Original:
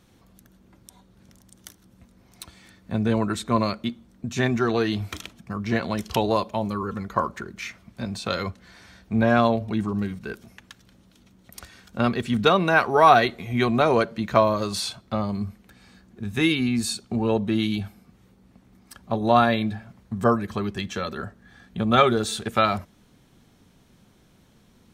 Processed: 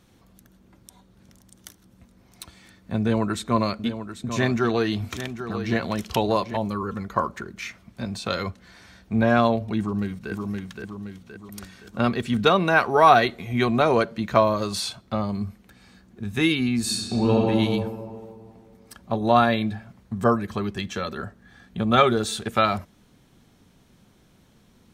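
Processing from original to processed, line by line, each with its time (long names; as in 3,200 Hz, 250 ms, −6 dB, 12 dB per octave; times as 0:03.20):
0:03.00–0:06.57: single-tap delay 792 ms −10.5 dB
0:09.79–0:10.32: delay throw 520 ms, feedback 50%, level −3.5 dB
0:16.80–0:17.43: thrown reverb, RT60 2.2 s, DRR −2.5 dB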